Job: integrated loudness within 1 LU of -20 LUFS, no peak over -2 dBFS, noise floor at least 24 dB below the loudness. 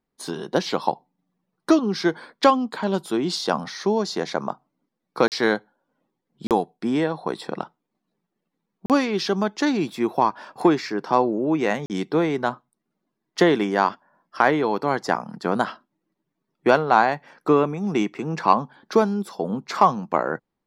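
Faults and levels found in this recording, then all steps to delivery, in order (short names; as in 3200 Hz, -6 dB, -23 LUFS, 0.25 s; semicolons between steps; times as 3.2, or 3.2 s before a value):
dropouts 4; longest dropout 38 ms; loudness -23.0 LUFS; peak -2.0 dBFS; loudness target -20.0 LUFS
-> interpolate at 5.28/6.47/8.86/11.86, 38 ms; gain +3 dB; limiter -2 dBFS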